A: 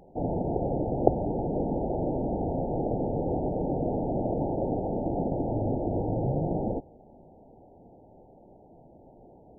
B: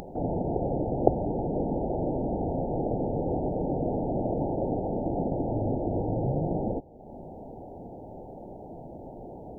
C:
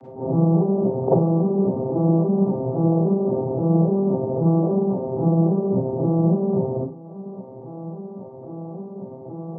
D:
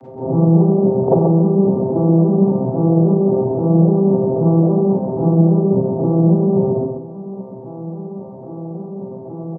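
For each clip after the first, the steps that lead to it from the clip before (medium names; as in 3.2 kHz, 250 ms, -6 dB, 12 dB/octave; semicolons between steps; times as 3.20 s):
upward compressor, threshold -31 dBFS
vocoder on a broken chord major triad, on C3, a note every 272 ms; Schroeder reverb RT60 0.35 s, combs from 33 ms, DRR -8.5 dB
feedback delay 133 ms, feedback 28%, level -6 dB; trim +3.5 dB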